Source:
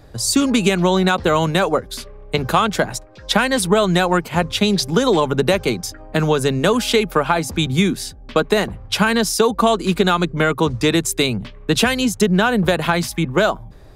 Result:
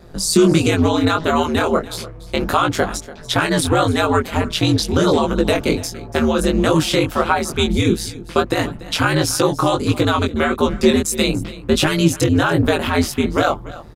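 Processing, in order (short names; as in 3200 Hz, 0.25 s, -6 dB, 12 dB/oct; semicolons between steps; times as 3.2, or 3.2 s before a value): in parallel at +2 dB: limiter -12 dBFS, peak gain reduction 9.5 dB; on the sum: small resonant body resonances 290/1300 Hz, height 7 dB; ring modulator 81 Hz; added noise brown -51 dBFS; chorus 1.5 Hz, delay 17 ms, depth 6.2 ms; on a send: echo 0.289 s -18 dB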